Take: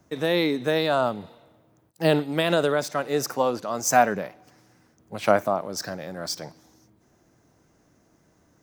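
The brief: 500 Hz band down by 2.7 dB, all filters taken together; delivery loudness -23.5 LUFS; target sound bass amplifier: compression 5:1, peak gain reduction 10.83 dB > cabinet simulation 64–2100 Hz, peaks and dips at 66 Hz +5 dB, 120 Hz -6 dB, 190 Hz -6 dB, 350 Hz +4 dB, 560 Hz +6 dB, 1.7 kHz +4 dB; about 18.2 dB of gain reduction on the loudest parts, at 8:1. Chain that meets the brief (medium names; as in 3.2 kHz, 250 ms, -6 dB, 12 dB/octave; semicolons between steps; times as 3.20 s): peaking EQ 500 Hz -8 dB; compression 8:1, threshold -35 dBFS; compression 5:1, threshold -43 dBFS; cabinet simulation 64–2100 Hz, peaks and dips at 66 Hz +5 dB, 120 Hz -6 dB, 190 Hz -6 dB, 350 Hz +4 dB, 560 Hz +6 dB, 1.7 kHz +4 dB; trim +24 dB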